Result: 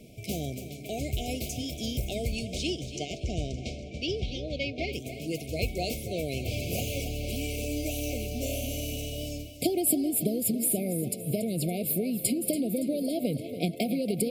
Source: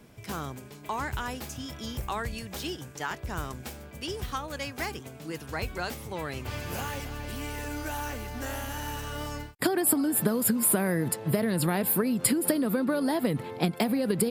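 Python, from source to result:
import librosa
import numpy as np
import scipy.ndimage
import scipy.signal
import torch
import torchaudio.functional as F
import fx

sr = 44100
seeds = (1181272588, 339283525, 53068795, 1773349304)

y = fx.lowpass(x, sr, hz=fx.line((2.31, 9300.0), (4.92, 4000.0)), slope=24, at=(2.31, 4.92), fade=0.02)
y = fx.rider(y, sr, range_db=4, speed_s=2.0)
y = fx.brickwall_bandstop(y, sr, low_hz=750.0, high_hz=2100.0)
y = fx.echo_feedback(y, sr, ms=283, feedback_pct=50, wet_db=-12.0)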